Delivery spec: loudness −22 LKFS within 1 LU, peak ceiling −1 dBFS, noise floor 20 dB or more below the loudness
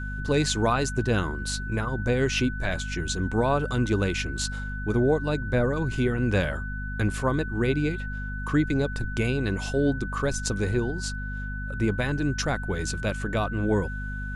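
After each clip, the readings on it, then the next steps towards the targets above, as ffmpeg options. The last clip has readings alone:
mains hum 50 Hz; hum harmonics up to 250 Hz; level of the hum −30 dBFS; interfering tone 1,500 Hz; level of the tone −36 dBFS; integrated loudness −27.0 LKFS; sample peak −10.5 dBFS; target loudness −22.0 LKFS
→ -af "bandreject=frequency=50:width_type=h:width=6,bandreject=frequency=100:width_type=h:width=6,bandreject=frequency=150:width_type=h:width=6,bandreject=frequency=200:width_type=h:width=6,bandreject=frequency=250:width_type=h:width=6"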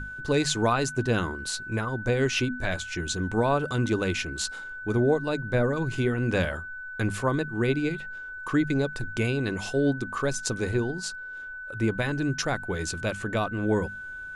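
mains hum none found; interfering tone 1,500 Hz; level of the tone −36 dBFS
→ -af "bandreject=frequency=1500:width=30"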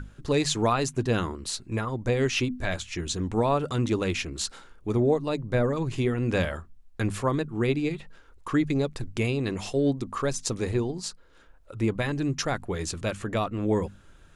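interfering tone none found; integrated loudness −28.0 LKFS; sample peak −11.0 dBFS; target loudness −22.0 LKFS
→ -af "volume=6dB"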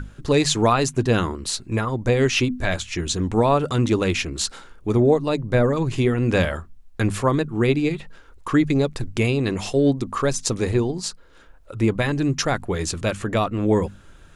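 integrated loudness −22.0 LKFS; sample peak −5.0 dBFS; background noise floor −48 dBFS

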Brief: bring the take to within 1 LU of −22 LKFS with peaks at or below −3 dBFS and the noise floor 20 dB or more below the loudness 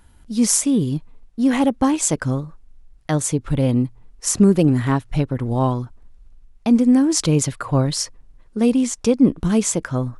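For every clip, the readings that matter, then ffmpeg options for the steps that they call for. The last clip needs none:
integrated loudness −19.0 LKFS; sample peak −2.5 dBFS; target loudness −22.0 LKFS
→ -af "volume=-3dB"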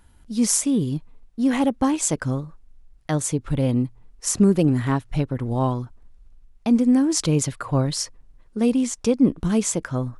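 integrated loudness −22.0 LKFS; sample peak −5.5 dBFS; background noise floor −53 dBFS

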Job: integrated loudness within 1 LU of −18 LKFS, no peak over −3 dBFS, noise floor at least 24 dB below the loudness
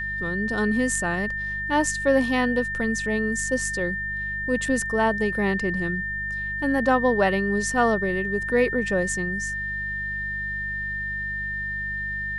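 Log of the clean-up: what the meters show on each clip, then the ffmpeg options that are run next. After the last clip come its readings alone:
mains hum 50 Hz; hum harmonics up to 200 Hz; level of the hum −35 dBFS; interfering tone 1,800 Hz; level of the tone −27 dBFS; integrated loudness −24.0 LKFS; sample peak −8.0 dBFS; target loudness −18.0 LKFS
→ -af "bandreject=frequency=50:width_type=h:width=4,bandreject=frequency=100:width_type=h:width=4,bandreject=frequency=150:width_type=h:width=4,bandreject=frequency=200:width_type=h:width=4"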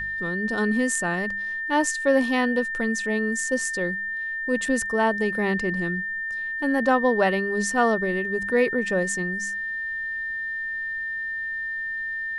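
mains hum none found; interfering tone 1,800 Hz; level of the tone −27 dBFS
→ -af "bandreject=frequency=1800:width=30"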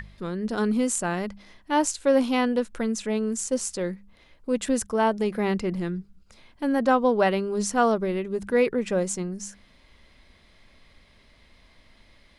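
interfering tone none found; integrated loudness −25.5 LKFS; sample peak −9.0 dBFS; target loudness −18.0 LKFS
→ -af "volume=7.5dB,alimiter=limit=-3dB:level=0:latency=1"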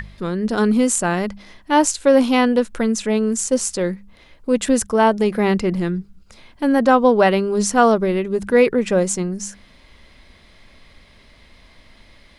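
integrated loudness −18.0 LKFS; sample peak −3.0 dBFS; background noise floor −50 dBFS

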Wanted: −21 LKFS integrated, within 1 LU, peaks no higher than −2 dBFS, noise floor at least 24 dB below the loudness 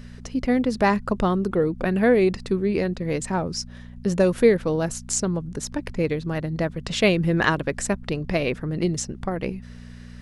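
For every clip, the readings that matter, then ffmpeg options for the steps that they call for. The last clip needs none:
mains hum 60 Hz; hum harmonics up to 240 Hz; level of the hum −39 dBFS; integrated loudness −23.5 LKFS; sample peak −5.0 dBFS; target loudness −21.0 LKFS
→ -af "bandreject=frequency=60:width_type=h:width=4,bandreject=frequency=120:width_type=h:width=4,bandreject=frequency=180:width_type=h:width=4,bandreject=frequency=240:width_type=h:width=4"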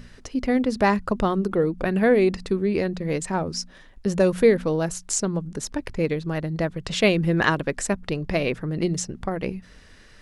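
mains hum none found; integrated loudness −24.0 LKFS; sample peak −5.5 dBFS; target loudness −21.0 LKFS
→ -af "volume=3dB"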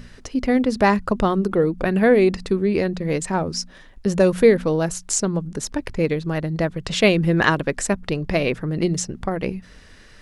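integrated loudness −21.0 LKFS; sample peak −2.5 dBFS; background noise floor −46 dBFS

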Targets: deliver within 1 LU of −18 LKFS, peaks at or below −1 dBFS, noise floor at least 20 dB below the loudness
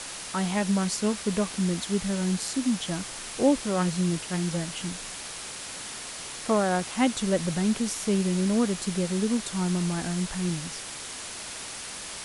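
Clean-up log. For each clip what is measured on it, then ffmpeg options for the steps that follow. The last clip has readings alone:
background noise floor −39 dBFS; target noise floor −48 dBFS; integrated loudness −28.0 LKFS; sample peak −11.0 dBFS; target loudness −18.0 LKFS
→ -af "afftdn=noise_reduction=9:noise_floor=-39"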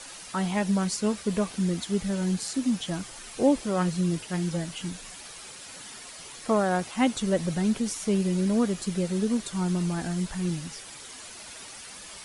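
background noise floor −44 dBFS; target noise floor −48 dBFS
→ -af "afftdn=noise_reduction=6:noise_floor=-44"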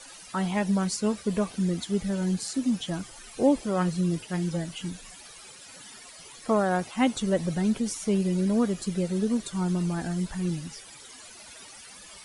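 background noise floor −47 dBFS; target noise floor −48 dBFS
→ -af "afftdn=noise_reduction=6:noise_floor=-47"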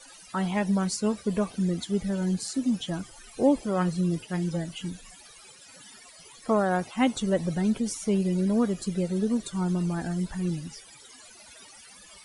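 background noise floor −51 dBFS; integrated loudness −27.5 LKFS; sample peak −11.5 dBFS; target loudness −18.0 LKFS
→ -af "volume=9.5dB"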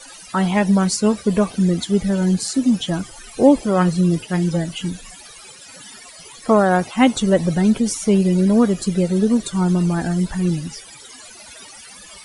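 integrated loudness −18.0 LKFS; sample peak −2.0 dBFS; background noise floor −41 dBFS

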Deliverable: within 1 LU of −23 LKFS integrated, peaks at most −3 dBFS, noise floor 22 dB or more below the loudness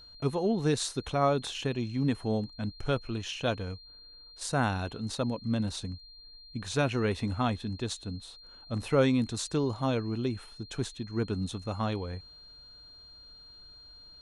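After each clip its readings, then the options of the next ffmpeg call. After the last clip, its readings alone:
interfering tone 4,200 Hz; level of the tone −50 dBFS; integrated loudness −31.5 LKFS; sample peak −12.5 dBFS; target loudness −23.0 LKFS
→ -af "bandreject=frequency=4200:width=30"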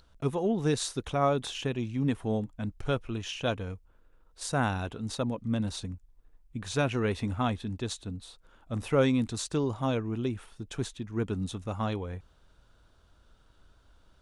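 interfering tone none found; integrated loudness −31.5 LKFS; sample peak −12.5 dBFS; target loudness −23.0 LKFS
→ -af "volume=8.5dB"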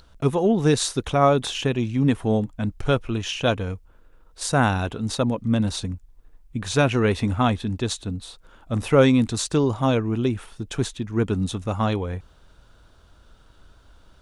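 integrated loudness −23.0 LKFS; sample peak −4.0 dBFS; background noise floor −54 dBFS

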